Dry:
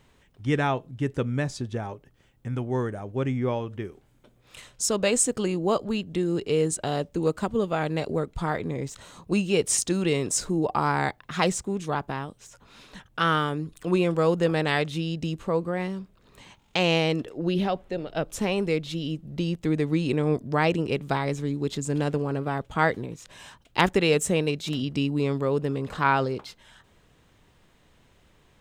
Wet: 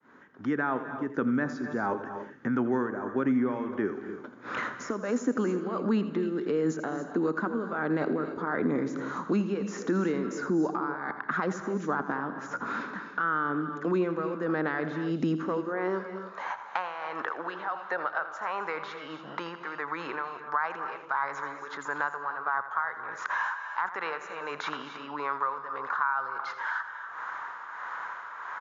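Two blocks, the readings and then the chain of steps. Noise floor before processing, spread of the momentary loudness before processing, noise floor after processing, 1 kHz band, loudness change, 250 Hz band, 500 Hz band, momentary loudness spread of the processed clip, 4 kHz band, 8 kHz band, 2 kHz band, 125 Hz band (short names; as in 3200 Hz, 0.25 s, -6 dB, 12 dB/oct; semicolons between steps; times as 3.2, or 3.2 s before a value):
-61 dBFS, 10 LU, -44 dBFS, -1.0 dB, -5.0 dB, -2.5 dB, -6.0 dB, 9 LU, -15.0 dB, -20.0 dB, -0.5 dB, -11.5 dB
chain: opening faded in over 1.99 s; EQ curve 690 Hz 0 dB, 1500 Hz +13 dB, 2700 Hz -11 dB; reverse; compressor 6:1, threshold -30 dBFS, peak gain reduction 20 dB; reverse; limiter -27.5 dBFS, peak gain reduction 9.5 dB; tremolo 1.5 Hz, depth 73%; high-pass sweep 250 Hz -> 970 Hz, 15.31–16.86; brick-wall FIR low-pass 7200 Hz; on a send: echo 82 ms -13.5 dB; on the sum: non-linear reverb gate 0.31 s rising, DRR 12 dB; three-band squash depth 70%; gain +8 dB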